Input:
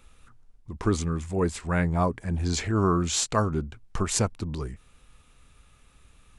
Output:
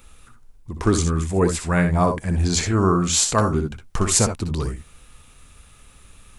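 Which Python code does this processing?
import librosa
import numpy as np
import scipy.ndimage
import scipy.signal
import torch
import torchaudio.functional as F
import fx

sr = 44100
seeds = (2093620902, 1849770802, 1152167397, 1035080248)

p1 = fx.high_shelf(x, sr, hz=8600.0, db=10.0)
p2 = fx.room_early_taps(p1, sr, ms=(62, 75), db=(-8.5, -12.5))
p3 = fx.rider(p2, sr, range_db=3, speed_s=0.5)
p4 = p2 + (p3 * librosa.db_to_amplitude(0.5))
y = p4 * librosa.db_to_amplitude(-1.0)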